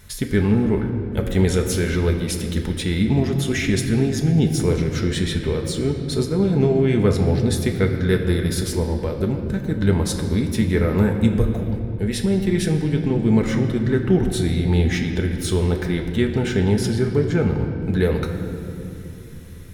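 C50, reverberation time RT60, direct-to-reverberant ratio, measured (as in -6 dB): 6.0 dB, 3.0 s, 2.0 dB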